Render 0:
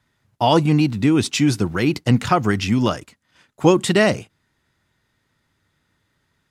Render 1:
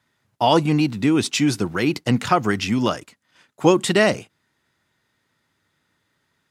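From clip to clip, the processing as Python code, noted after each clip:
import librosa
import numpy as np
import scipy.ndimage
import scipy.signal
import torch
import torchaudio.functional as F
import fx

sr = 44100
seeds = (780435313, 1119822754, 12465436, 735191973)

y = fx.highpass(x, sr, hz=190.0, slope=6)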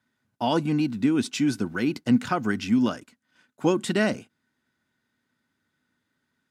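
y = fx.small_body(x, sr, hz=(240.0, 1500.0), ring_ms=45, db=11)
y = y * 10.0 ** (-9.0 / 20.0)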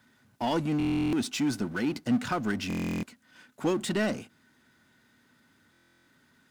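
y = fx.power_curve(x, sr, exponent=0.7)
y = fx.buffer_glitch(y, sr, at_s=(0.78, 2.68, 5.72), block=1024, repeats=14)
y = y * 10.0 ** (-7.5 / 20.0)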